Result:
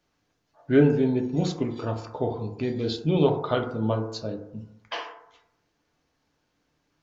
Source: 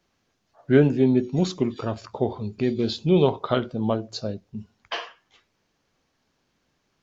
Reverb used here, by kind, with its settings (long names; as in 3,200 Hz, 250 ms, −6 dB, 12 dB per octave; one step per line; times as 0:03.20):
feedback delay network reverb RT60 0.81 s, low-frequency decay 0.8×, high-frequency decay 0.25×, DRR 3 dB
level −3.5 dB